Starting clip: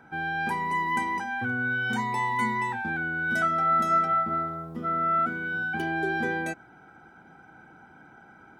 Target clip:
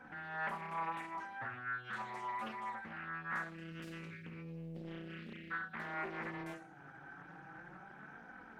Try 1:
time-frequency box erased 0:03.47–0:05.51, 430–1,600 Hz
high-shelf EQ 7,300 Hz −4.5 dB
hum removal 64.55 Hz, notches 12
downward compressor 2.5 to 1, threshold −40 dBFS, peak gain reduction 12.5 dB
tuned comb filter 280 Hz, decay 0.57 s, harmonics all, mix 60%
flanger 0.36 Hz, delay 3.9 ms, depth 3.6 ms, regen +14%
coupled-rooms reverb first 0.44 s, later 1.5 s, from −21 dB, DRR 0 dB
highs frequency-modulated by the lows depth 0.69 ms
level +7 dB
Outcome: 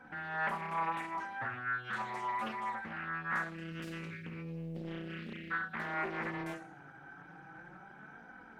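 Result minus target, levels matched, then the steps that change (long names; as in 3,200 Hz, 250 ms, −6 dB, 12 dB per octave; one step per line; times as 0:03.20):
downward compressor: peak gain reduction −5 dB
change: downward compressor 2.5 to 1, threshold −48 dBFS, peak gain reduction 17 dB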